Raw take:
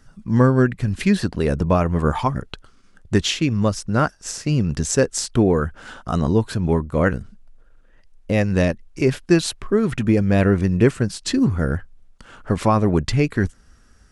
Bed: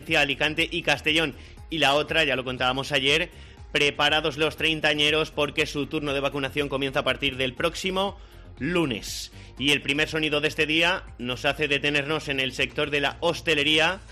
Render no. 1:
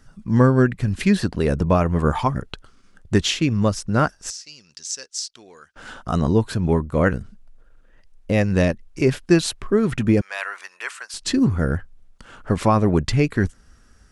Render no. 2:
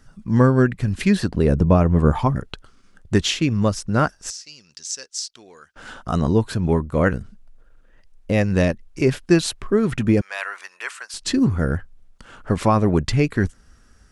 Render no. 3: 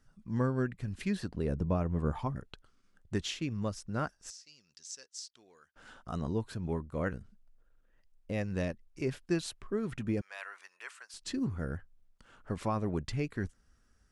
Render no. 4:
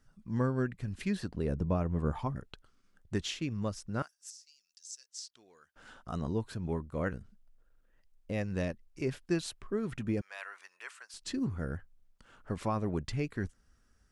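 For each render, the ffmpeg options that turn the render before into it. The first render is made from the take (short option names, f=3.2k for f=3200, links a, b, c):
-filter_complex "[0:a]asettb=1/sr,asplit=3[a][b][c];[a]atrim=end=4.304[d];[b]atrim=start=4.3:end=5.76,asetpts=PTS-STARTPTS,afade=t=in:d=0.004:c=qsin,afade=t=out:st=1.456:d=0.004:c=qsin,bandpass=f=5.2k:t=q:w=2.2[e];[c]atrim=start=5.756[f];[d][e]acrossfade=d=0.004:c1=hsin:c2=qsin[g];[g][f]acrossfade=d=0.004:c1=qsin:c2=hsin,asettb=1/sr,asplit=3[h][i][j];[h]atrim=end=10.214[k];[i]atrim=start=10.21:end=11.14,asetpts=PTS-STARTPTS,afade=t=in:d=0.004:c=qsin,afade=t=out:st=0.926:d=0.004:c=qsin,highpass=f=940:w=0.5412,highpass=f=940:w=1.3066[l];[j]atrim=start=11.136[m];[k][l]acrossfade=d=0.004:c1=hsin:c2=qsin[n];[n][m]acrossfade=d=0.004:c1=qsin:c2=hsin"
-filter_complex "[0:a]asettb=1/sr,asplit=3[a][b][c];[a]atrim=end=1.304[d];[b]atrim=start=1.3:end=2.36,asetpts=PTS-STARTPTS,afade=t=in:d=0.004:c=qsin,afade=t=out:st=1.056:d=0.004:c=qsin,tiltshelf=f=690:g=4.5[e];[c]atrim=start=2.356[f];[d][e]acrossfade=d=0.004:c1=hsin:c2=qsin[g];[g][f]acrossfade=d=0.004:c1=qsin:c2=hsin"
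-af "volume=-15.5dB"
-filter_complex "[0:a]asettb=1/sr,asplit=3[a][b][c];[a]atrim=end=4.024[d];[b]atrim=start=4.02:end=5.09,asetpts=PTS-STARTPTS,afade=t=in:d=0.004:c=qsin,afade=t=out:st=1.066:d=0.004:c=qsin,aderivative[e];[c]atrim=start=5.086[f];[d][e]acrossfade=d=0.004:c1=hsin:c2=qsin[g];[g][f]acrossfade=d=0.004:c1=qsin:c2=hsin"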